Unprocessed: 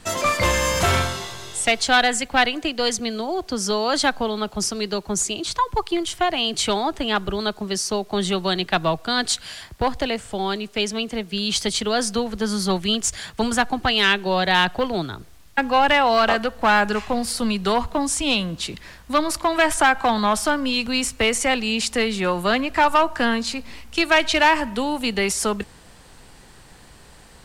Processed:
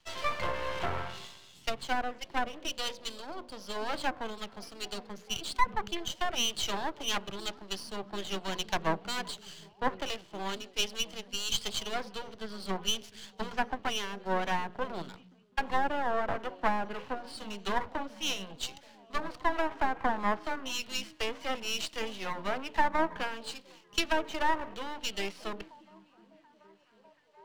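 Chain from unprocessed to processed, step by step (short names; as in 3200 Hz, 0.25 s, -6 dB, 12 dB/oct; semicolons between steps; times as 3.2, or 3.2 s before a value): treble ducked by the level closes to 830 Hz, closed at -13.5 dBFS; speaker cabinet 110–5400 Hz, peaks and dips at 240 Hz -8 dB, 970 Hz +5 dB, 3000 Hz +9 dB, 4400 Hz +4 dB; notches 60/120/180/240/300/360/420/480/540/600 Hz; half-wave rectifier; on a send: delay with a stepping band-pass 0.732 s, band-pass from 170 Hz, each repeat 0.7 oct, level -7.5 dB; on the sum: three-band expander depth 70%; gain -8 dB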